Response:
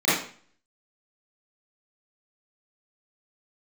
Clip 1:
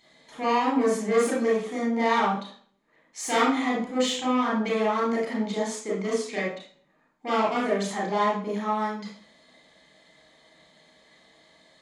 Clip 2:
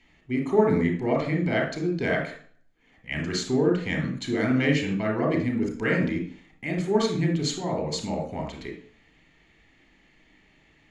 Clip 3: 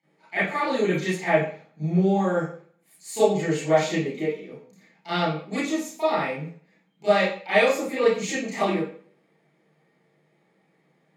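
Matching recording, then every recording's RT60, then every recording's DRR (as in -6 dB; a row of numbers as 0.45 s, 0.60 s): 3; 0.45 s, 0.45 s, 0.45 s; -4.0 dB, 3.0 dB, -12.0 dB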